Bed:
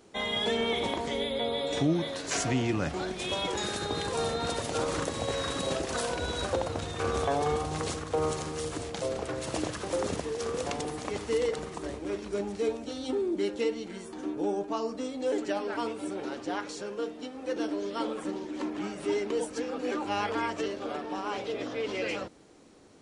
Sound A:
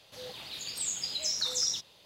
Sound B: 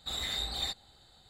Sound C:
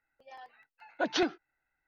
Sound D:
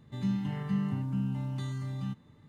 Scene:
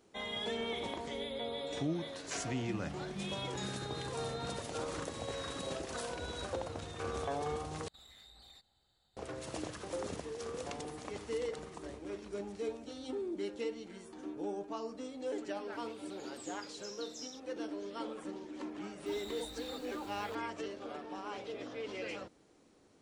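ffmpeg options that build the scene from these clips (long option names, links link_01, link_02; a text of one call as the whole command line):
ffmpeg -i bed.wav -i cue0.wav -i cue1.wav -i cue2.wav -i cue3.wav -filter_complex "[2:a]asplit=2[link_01][link_02];[0:a]volume=-9dB[link_03];[link_01]acompressor=threshold=-39dB:ratio=6:attack=3.2:release=140:knee=1:detection=peak[link_04];[1:a]lowpass=11000[link_05];[link_02]aeval=exprs='val(0)+0.5*0.0168*sgn(val(0))':channel_layout=same[link_06];[link_03]asplit=2[link_07][link_08];[link_07]atrim=end=7.884[link_09];[link_04]atrim=end=1.29,asetpts=PTS-STARTPTS,volume=-15.5dB[link_10];[link_08]atrim=start=9.166[link_11];[4:a]atrim=end=2.48,asetpts=PTS-STARTPTS,volume=-13.5dB,afade=type=in:duration=0.004:curve=hsin,afade=type=out:start_time=2.476:duration=0.004:curve=hsin,adelay=2450[link_12];[link_05]atrim=end=2.05,asetpts=PTS-STARTPTS,volume=-18dB,afade=type=in:duration=0.004:curve=hsin,afade=type=out:start_time=2.046:duration=0.004:curve=hsin,adelay=15590[link_13];[link_06]atrim=end=1.29,asetpts=PTS-STARTPTS,volume=-17dB,afade=type=in:duration=0.004:curve=hsin,afade=type=out:start_time=1.286:duration=0.004:curve=hsin,adelay=19060[link_14];[link_09][link_10]acrossfade=duration=0.004:curve1=hsin:curve2=hsin[link_15];[link_15][link_11]acrossfade=duration=0.004:curve1=hsin:curve2=hsin[link_16];[link_16][link_12][link_13][link_14]amix=inputs=4:normalize=0" out.wav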